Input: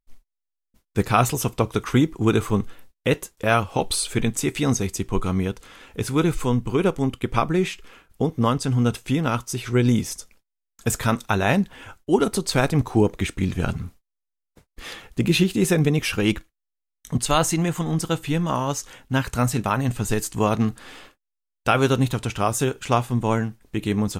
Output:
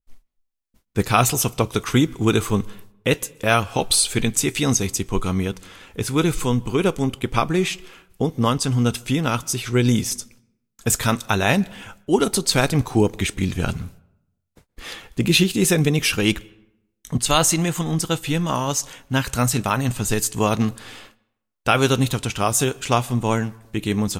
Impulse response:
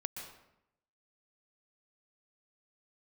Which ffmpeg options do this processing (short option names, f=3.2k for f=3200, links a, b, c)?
-filter_complex "[0:a]asplit=2[a][b];[b]highshelf=f=7.6k:g=-10.5[c];[1:a]atrim=start_sample=2205[d];[c][d]afir=irnorm=-1:irlink=0,volume=-18.5dB[e];[a][e]amix=inputs=2:normalize=0,adynamicequalizer=threshold=0.0141:dfrequency=2400:dqfactor=0.7:tfrequency=2400:tqfactor=0.7:attack=5:release=100:ratio=0.375:range=3.5:mode=boostabove:tftype=highshelf"